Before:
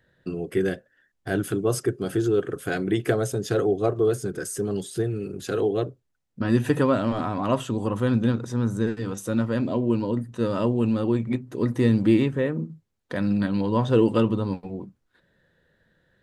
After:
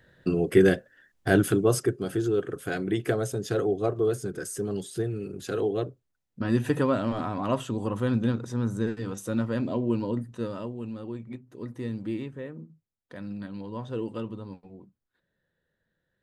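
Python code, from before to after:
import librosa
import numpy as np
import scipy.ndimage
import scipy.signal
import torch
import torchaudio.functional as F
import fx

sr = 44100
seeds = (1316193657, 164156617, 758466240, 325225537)

y = fx.gain(x, sr, db=fx.line((1.29, 5.5), (2.12, -3.5), (10.28, -3.5), (10.71, -13.5)))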